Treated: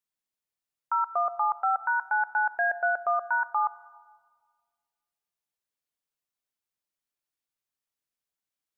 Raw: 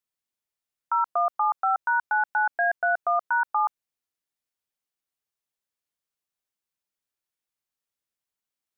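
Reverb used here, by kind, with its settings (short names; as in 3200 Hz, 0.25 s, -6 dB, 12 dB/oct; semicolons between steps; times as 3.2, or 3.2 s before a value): shoebox room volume 2500 m³, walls mixed, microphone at 0.4 m; gain -2.5 dB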